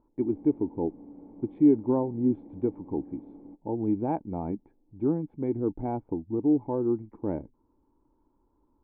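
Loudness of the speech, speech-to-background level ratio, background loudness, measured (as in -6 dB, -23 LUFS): -29.0 LUFS, 20.0 dB, -49.0 LUFS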